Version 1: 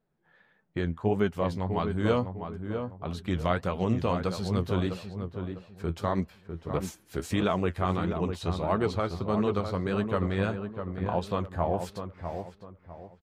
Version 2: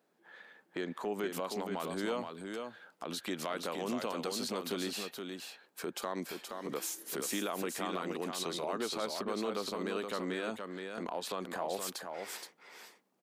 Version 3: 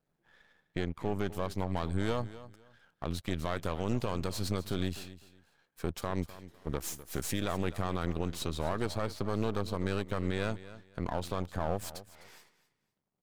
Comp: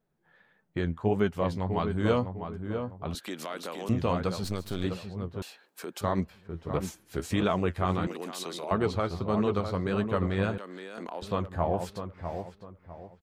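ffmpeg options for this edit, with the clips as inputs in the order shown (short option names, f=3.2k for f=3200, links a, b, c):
-filter_complex "[1:a]asplit=4[a][b][c][d];[0:a]asplit=6[e][f][g][h][i][j];[e]atrim=end=3.152[k];[a]atrim=start=3.148:end=3.892[l];[f]atrim=start=3.888:end=4.442[m];[2:a]atrim=start=4.438:end=4.842[n];[g]atrim=start=4.838:end=5.422[o];[b]atrim=start=5.418:end=6.012[p];[h]atrim=start=6.008:end=8.072[q];[c]atrim=start=8.068:end=8.712[r];[i]atrim=start=8.708:end=10.582[s];[d]atrim=start=10.578:end=11.222[t];[j]atrim=start=11.218[u];[k][l]acrossfade=d=0.004:c1=hsin:c2=hsin[v];[v][m]acrossfade=d=0.004:c1=hsin:c2=hsin[w];[w][n]acrossfade=d=0.004:c1=hsin:c2=hsin[x];[x][o]acrossfade=d=0.004:c1=hsin:c2=hsin[y];[y][p]acrossfade=d=0.004:c1=hsin:c2=hsin[z];[z][q]acrossfade=d=0.004:c1=hsin:c2=hsin[aa];[aa][r]acrossfade=d=0.004:c1=hsin:c2=hsin[ab];[ab][s]acrossfade=d=0.004:c1=hsin:c2=hsin[ac];[ac][t]acrossfade=d=0.004:c1=hsin:c2=hsin[ad];[ad][u]acrossfade=d=0.004:c1=hsin:c2=hsin"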